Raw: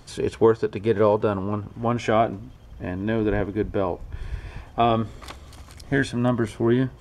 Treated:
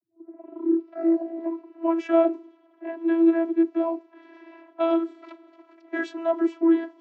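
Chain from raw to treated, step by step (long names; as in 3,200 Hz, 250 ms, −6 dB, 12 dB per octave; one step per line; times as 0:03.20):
turntable start at the beginning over 2.03 s
low-pass that shuts in the quiet parts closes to 1,800 Hz, open at −17 dBFS
channel vocoder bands 32, saw 331 Hz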